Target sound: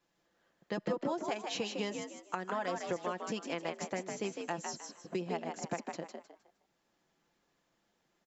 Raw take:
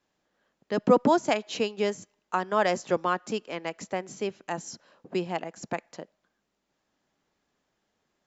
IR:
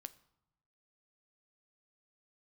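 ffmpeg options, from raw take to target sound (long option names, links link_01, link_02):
-filter_complex "[0:a]aecho=1:1:5.9:0.54,acompressor=threshold=-30dB:ratio=8,asplit=2[link_01][link_02];[link_02]asplit=4[link_03][link_04][link_05][link_06];[link_03]adelay=155,afreqshift=62,volume=-5dB[link_07];[link_04]adelay=310,afreqshift=124,volume=-15.5dB[link_08];[link_05]adelay=465,afreqshift=186,volume=-25.9dB[link_09];[link_06]adelay=620,afreqshift=248,volume=-36.4dB[link_10];[link_07][link_08][link_09][link_10]amix=inputs=4:normalize=0[link_11];[link_01][link_11]amix=inputs=2:normalize=0,volume=-2.5dB"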